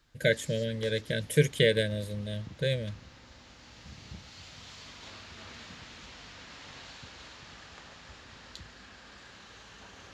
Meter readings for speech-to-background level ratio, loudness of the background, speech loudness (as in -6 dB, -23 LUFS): 19.0 dB, -48.5 LUFS, -29.5 LUFS